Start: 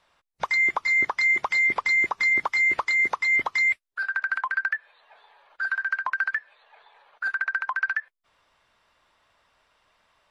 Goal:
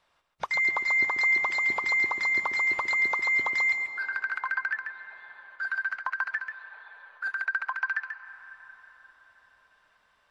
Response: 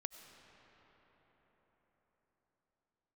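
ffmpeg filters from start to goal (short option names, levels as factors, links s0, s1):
-filter_complex "[0:a]asplit=2[s0][s1];[1:a]atrim=start_sample=2205,adelay=138[s2];[s1][s2]afir=irnorm=-1:irlink=0,volume=0.75[s3];[s0][s3]amix=inputs=2:normalize=0,volume=0.596"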